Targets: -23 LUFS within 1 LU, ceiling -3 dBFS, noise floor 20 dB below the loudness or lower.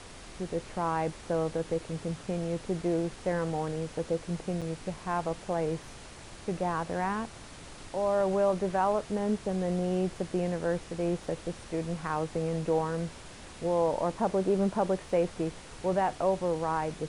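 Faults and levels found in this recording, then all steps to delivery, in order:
dropouts 1; longest dropout 6.9 ms; noise floor -47 dBFS; noise floor target -52 dBFS; loudness -31.5 LUFS; peak level -15.0 dBFS; loudness target -23.0 LUFS
-> interpolate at 4.61 s, 6.9 ms; noise print and reduce 6 dB; trim +8.5 dB

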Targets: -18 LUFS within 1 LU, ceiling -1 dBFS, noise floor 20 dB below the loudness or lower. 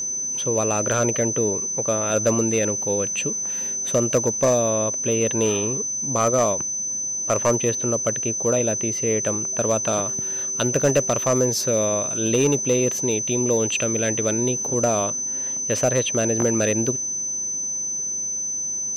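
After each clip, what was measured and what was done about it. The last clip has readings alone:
clipped samples 0.3%; clipping level -11.5 dBFS; steady tone 6.1 kHz; tone level -24 dBFS; loudness -21.0 LUFS; peak level -11.5 dBFS; loudness target -18.0 LUFS
-> clip repair -11.5 dBFS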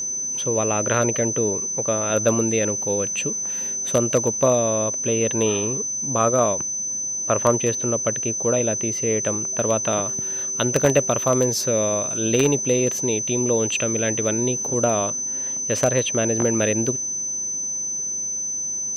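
clipped samples 0.0%; steady tone 6.1 kHz; tone level -24 dBFS
-> band-stop 6.1 kHz, Q 30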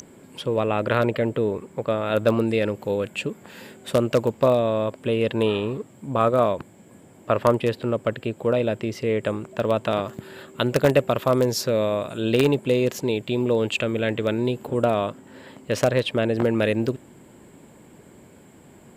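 steady tone not found; loudness -23.5 LUFS; peak level -2.0 dBFS; loudness target -18.0 LUFS
-> trim +5.5 dB; peak limiter -1 dBFS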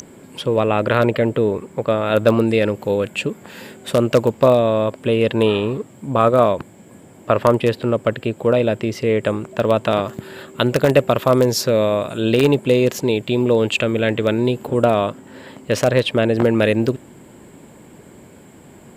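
loudness -18.0 LUFS; peak level -1.0 dBFS; noise floor -44 dBFS

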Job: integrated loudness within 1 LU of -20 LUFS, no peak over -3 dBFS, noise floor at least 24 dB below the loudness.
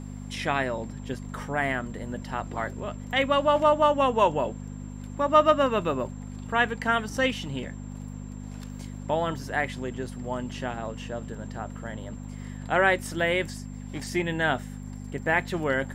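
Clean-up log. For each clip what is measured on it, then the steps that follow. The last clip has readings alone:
hum 50 Hz; highest harmonic 250 Hz; hum level -35 dBFS; steady tone 7.4 kHz; tone level -56 dBFS; loudness -27.0 LUFS; peak level -6.5 dBFS; loudness target -20.0 LUFS
-> de-hum 50 Hz, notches 5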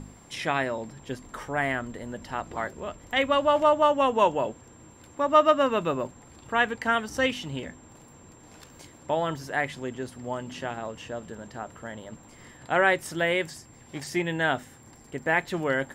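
hum not found; steady tone 7.4 kHz; tone level -56 dBFS
-> band-stop 7.4 kHz, Q 30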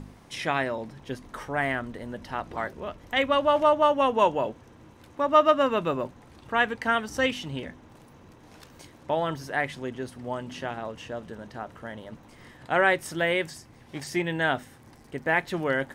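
steady tone not found; loudness -26.5 LUFS; peak level -7.0 dBFS; loudness target -20.0 LUFS
-> trim +6.5 dB; peak limiter -3 dBFS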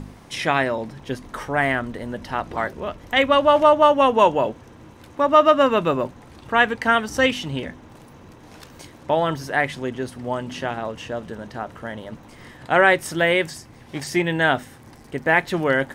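loudness -20.5 LUFS; peak level -3.0 dBFS; noise floor -46 dBFS

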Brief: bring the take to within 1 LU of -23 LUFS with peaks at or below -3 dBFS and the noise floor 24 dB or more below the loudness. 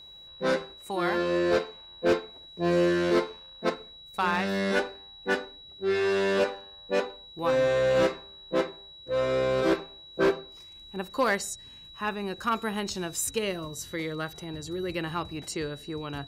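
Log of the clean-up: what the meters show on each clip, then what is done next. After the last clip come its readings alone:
clipped samples 0.6%; clipping level -17.5 dBFS; steady tone 3.9 kHz; tone level -46 dBFS; loudness -28.5 LUFS; peak level -17.5 dBFS; loudness target -23.0 LUFS
-> clip repair -17.5 dBFS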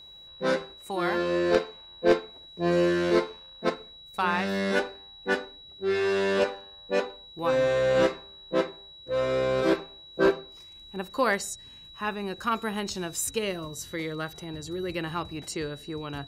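clipped samples 0.0%; steady tone 3.9 kHz; tone level -46 dBFS
-> band-stop 3.9 kHz, Q 30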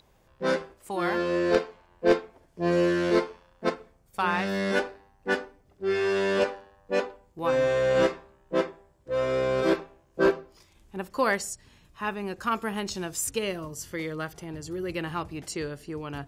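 steady tone not found; loudness -28.0 LUFS; peak level -8.5 dBFS; loudness target -23.0 LUFS
-> trim +5 dB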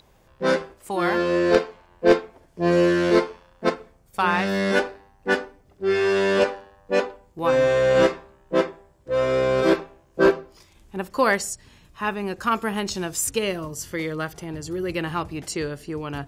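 loudness -23.0 LUFS; peak level -3.5 dBFS; noise floor -57 dBFS

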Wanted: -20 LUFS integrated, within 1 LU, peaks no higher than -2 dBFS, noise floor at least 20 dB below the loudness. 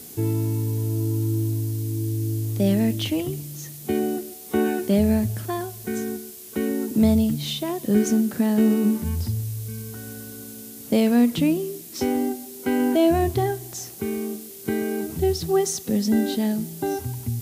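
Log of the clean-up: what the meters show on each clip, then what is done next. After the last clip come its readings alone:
noise floor -40 dBFS; noise floor target -44 dBFS; loudness -23.5 LUFS; peak level -8.0 dBFS; loudness target -20.0 LUFS
-> noise print and reduce 6 dB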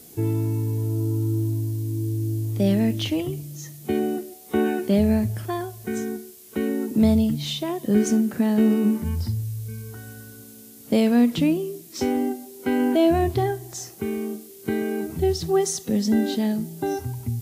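noise floor -45 dBFS; loudness -24.0 LUFS; peak level -8.0 dBFS; loudness target -20.0 LUFS
-> trim +4 dB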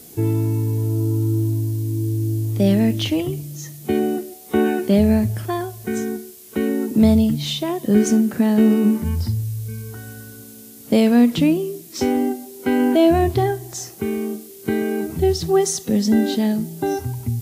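loudness -20.0 LUFS; peak level -4.0 dBFS; noise floor -41 dBFS

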